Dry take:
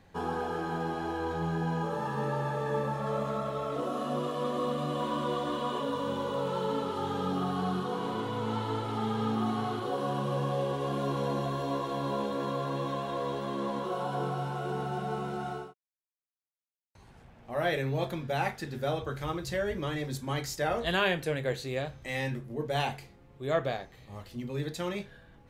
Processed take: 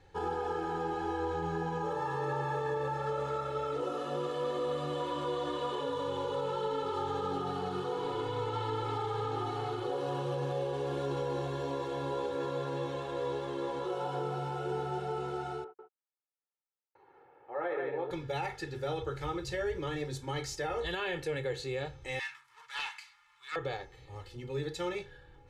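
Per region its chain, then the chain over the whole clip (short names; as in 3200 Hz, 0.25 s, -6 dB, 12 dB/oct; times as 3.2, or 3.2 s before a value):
15.64–18.11 Butterworth band-pass 740 Hz, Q 0.56 + echo 0.147 s -4.5 dB
22.19–23.56 G.711 law mismatch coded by mu + elliptic high-pass 1000 Hz + Doppler distortion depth 0.73 ms
whole clip: LPF 8300 Hz 12 dB/oct; comb 2.3 ms, depth 96%; limiter -21.5 dBFS; gain -4 dB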